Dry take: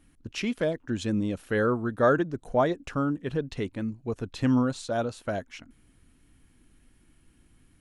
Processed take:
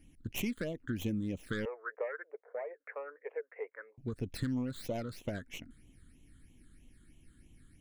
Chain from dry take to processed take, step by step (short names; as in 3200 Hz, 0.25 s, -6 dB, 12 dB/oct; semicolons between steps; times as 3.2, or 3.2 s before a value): tracing distortion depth 0.26 ms; 1.65–3.98 Chebyshev band-pass 440–2200 Hz, order 5; compressor 8:1, threshold -31 dBFS, peak gain reduction 14.5 dB; phaser stages 8, 3.1 Hz, lowest notch 740–1500 Hz